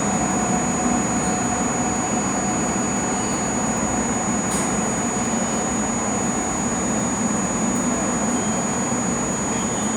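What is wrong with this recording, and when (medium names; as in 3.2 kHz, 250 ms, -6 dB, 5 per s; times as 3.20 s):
crackle 12 per s -27 dBFS
whine 6.8 kHz -26 dBFS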